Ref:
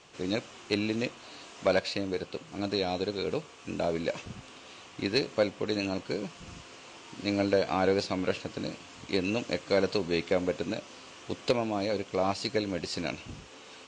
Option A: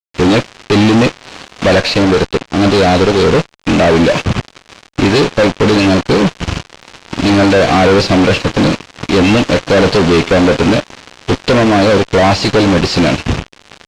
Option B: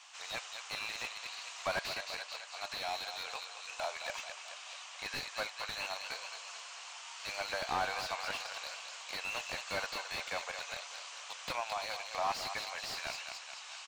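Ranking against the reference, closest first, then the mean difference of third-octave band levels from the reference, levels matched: A, B; 5.5 dB, 13.5 dB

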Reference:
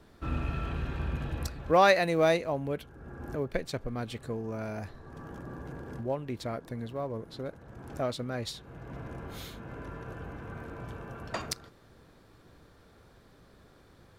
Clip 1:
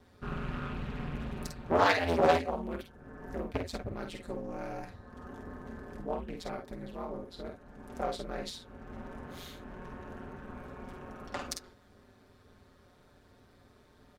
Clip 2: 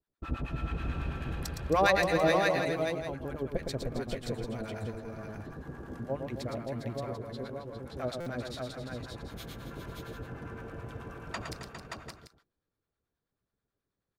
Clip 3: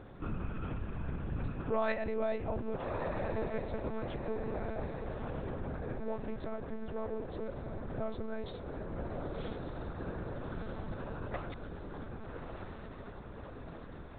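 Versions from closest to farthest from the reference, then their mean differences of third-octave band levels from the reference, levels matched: 1, 2, 3; 3.5 dB, 6.5 dB, 9.0 dB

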